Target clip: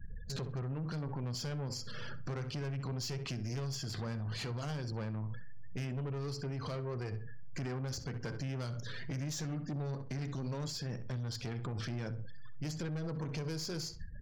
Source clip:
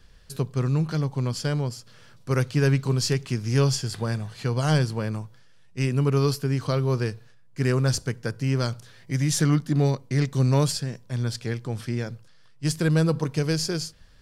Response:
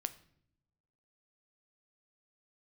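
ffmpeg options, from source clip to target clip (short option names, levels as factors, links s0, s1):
-filter_complex "[0:a]aeval=exprs='if(lt(val(0),0),0.708*val(0),val(0))':c=same,acompressor=threshold=0.0158:ratio=6,flanger=delay=9:depth=5.6:regen=-74:speed=0.17:shape=triangular,afftfilt=real='re*gte(hypot(re,im),0.00141)':imag='im*gte(hypot(re,im),0.00141)':win_size=1024:overlap=0.75,aresample=16000,aresample=44100,aeval=exprs='(tanh(141*val(0)+0.3)-tanh(0.3))/141':c=same,asplit=2[s0][s1];[s1]adelay=65,lowpass=f=2800:p=1,volume=0.211,asplit=2[s2][s3];[s3]adelay=65,lowpass=f=2800:p=1,volume=0.26,asplit=2[s4][s5];[s5]adelay=65,lowpass=f=2800:p=1,volume=0.26[s6];[s2][s4][s6]amix=inputs=3:normalize=0[s7];[s0][s7]amix=inputs=2:normalize=0,alimiter=level_in=15.8:limit=0.0631:level=0:latency=1:release=59,volume=0.0631,volume=5.96"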